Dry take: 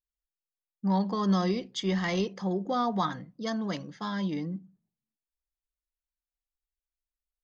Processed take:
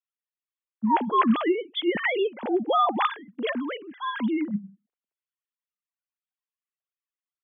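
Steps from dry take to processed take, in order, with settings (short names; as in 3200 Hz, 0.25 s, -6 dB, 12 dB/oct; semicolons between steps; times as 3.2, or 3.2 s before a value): sine-wave speech; low shelf 200 Hz -8 dB; gain +6 dB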